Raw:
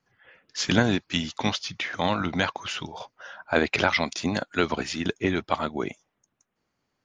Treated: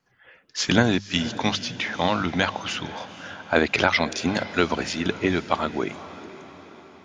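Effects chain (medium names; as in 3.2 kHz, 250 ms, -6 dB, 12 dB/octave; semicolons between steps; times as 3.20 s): hum notches 50/100/150/200 Hz; echo that smears into a reverb 498 ms, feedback 54%, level -15.5 dB; trim +2.5 dB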